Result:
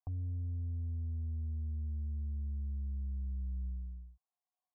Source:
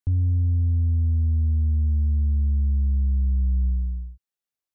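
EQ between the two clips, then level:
formant resonators in series a
+11.5 dB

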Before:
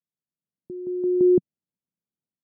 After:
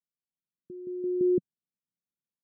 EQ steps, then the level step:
elliptic low-pass filter 540 Hz
−6.5 dB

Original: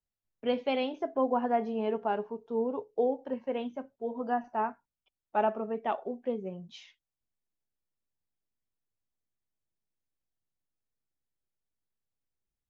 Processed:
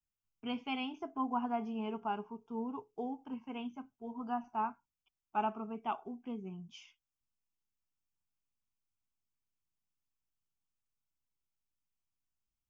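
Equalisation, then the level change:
phaser with its sweep stopped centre 2,700 Hz, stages 8
−1.5 dB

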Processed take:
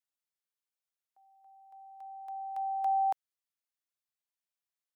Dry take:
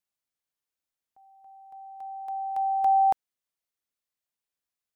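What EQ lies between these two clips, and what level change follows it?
Bessel high-pass filter 650 Hz, order 2
−5.5 dB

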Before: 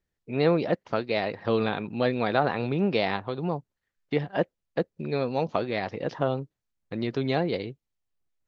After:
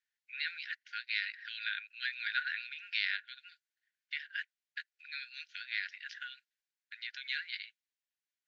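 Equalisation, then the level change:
linear-phase brick-wall high-pass 1,400 Hz
high-frequency loss of the air 55 metres
0.0 dB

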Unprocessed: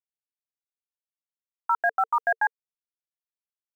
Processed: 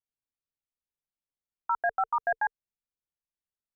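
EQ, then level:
spectral tilt −3 dB per octave
−4.0 dB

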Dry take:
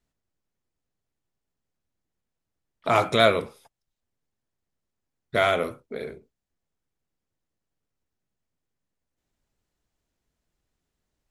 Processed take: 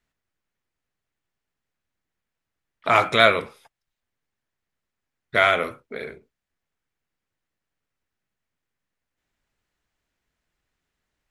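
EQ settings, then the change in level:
parametric band 1,900 Hz +9.5 dB 2 octaves
−2.0 dB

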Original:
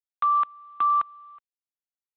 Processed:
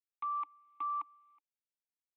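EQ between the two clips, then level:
spectral tilt +2 dB per octave
dynamic equaliser 1,100 Hz, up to +6 dB, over −36 dBFS, Q 4.5
formant filter u
0.0 dB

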